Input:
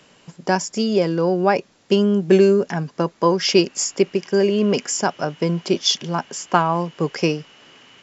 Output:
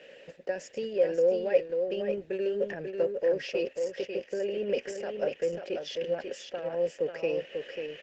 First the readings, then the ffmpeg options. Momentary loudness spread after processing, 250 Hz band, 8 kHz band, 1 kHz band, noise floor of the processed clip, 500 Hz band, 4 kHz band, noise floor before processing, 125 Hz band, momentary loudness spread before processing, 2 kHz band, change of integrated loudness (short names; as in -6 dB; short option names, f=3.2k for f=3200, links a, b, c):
10 LU, -19.0 dB, n/a, -23.0 dB, -54 dBFS, -8.0 dB, -19.0 dB, -56 dBFS, -23.5 dB, 8 LU, -12.5 dB, -11.5 dB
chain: -filter_complex "[0:a]aeval=exprs='0.841*(cos(1*acos(clip(val(0)/0.841,-1,1)))-cos(1*PI/2))+0.0188*(cos(8*acos(clip(val(0)/0.841,-1,1)))-cos(8*PI/2))':c=same,areverse,acompressor=threshold=-25dB:ratio=16,areverse,alimiter=limit=-23.5dB:level=0:latency=1:release=199,acontrast=27,asplit=3[a][b][c];[a]bandpass=f=530:t=q:w=8,volume=0dB[d];[b]bandpass=f=1.84k:t=q:w=8,volume=-6dB[e];[c]bandpass=f=2.48k:t=q:w=8,volume=-9dB[f];[d][e][f]amix=inputs=3:normalize=0,asplit=2[g][h];[h]aecho=0:1:542:0.531[i];[g][i]amix=inputs=2:normalize=0,volume=8.5dB" -ar 48000 -c:a libopus -b:a 12k